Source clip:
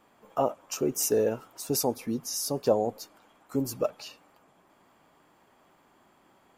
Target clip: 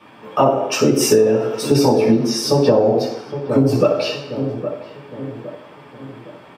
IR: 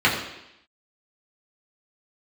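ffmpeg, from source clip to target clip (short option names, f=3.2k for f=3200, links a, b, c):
-filter_complex "[0:a]asettb=1/sr,asplit=3[a][b][c];[a]atrim=end=1.664[d];[b]atrim=start=1.66:end=3.85,asetpts=PTS-STARTPTS,afade=t=in:d=0.004:c=qsin,afade=t=out:st=2.186:d=0.004:c=qsin,highshelf=f=4.7k:g=-6.5[e];[c]atrim=start=3.846[f];[d][e]acrossfade=d=0.004:c1=hsin:c2=qsin[g];[g][f]acrossfade=d=0.004:c1=qsin:c2=hsin,asplit=2[h][i];[i]adelay=812,lowpass=f=890:p=1,volume=-13dB,asplit=2[j][k];[k]adelay=812,lowpass=f=890:p=1,volume=0.49,asplit=2[l][m];[m]adelay=812,lowpass=f=890:p=1,volume=0.49,asplit=2[n][o];[o]adelay=812,lowpass=f=890:p=1,volume=0.49,asplit=2[p][q];[q]adelay=812,lowpass=f=890:p=1,volume=0.49[r];[h][j][l][n][p][r]amix=inputs=6:normalize=0[s];[1:a]atrim=start_sample=2205,asetrate=52920,aresample=44100[t];[s][t]afir=irnorm=-1:irlink=0,acompressor=threshold=-11dB:ratio=16,volume=1.5dB"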